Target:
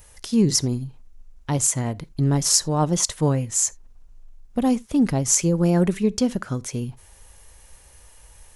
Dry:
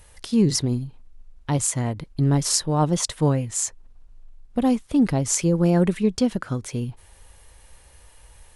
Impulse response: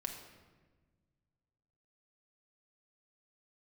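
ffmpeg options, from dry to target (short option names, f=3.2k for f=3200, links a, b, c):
-filter_complex "[0:a]aexciter=amount=2.2:drive=2.6:freq=5.5k,asplit=2[a][b];[1:a]atrim=start_sample=2205,atrim=end_sample=3969[c];[b][c]afir=irnorm=-1:irlink=0,volume=-13.5dB[d];[a][d]amix=inputs=2:normalize=0,volume=-1.5dB"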